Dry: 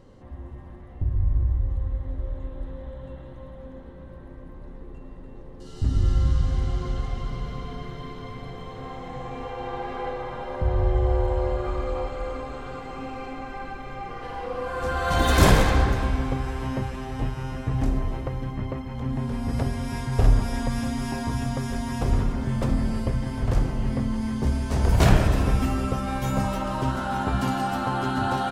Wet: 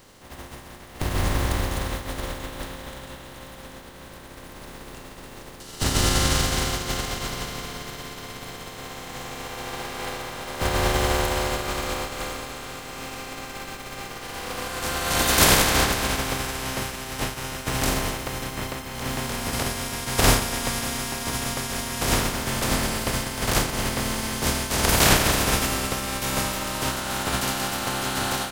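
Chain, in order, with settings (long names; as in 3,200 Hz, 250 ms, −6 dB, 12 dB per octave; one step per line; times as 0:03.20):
compressing power law on the bin magnitudes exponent 0.4
every ending faded ahead of time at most 110 dB per second
level −1 dB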